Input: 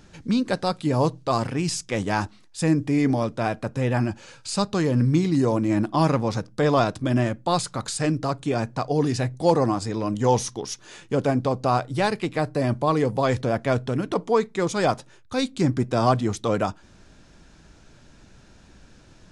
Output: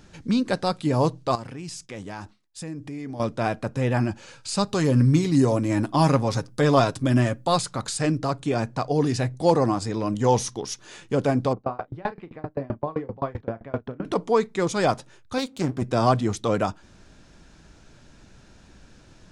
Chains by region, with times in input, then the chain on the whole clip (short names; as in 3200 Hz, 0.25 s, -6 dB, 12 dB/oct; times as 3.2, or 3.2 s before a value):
1.35–3.2 expander -41 dBFS + compressor 2.5:1, threshold -38 dBFS
4.67–7.56 high shelf 8100 Hz +9.5 dB + comb 7.4 ms, depth 40%
11.53–14.05 LPF 1800 Hz + doubler 36 ms -7.5 dB + dB-ramp tremolo decaying 7.7 Hz, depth 29 dB
15.38–15.82 half-wave gain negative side -12 dB + HPF 130 Hz 6 dB/oct
whole clip: dry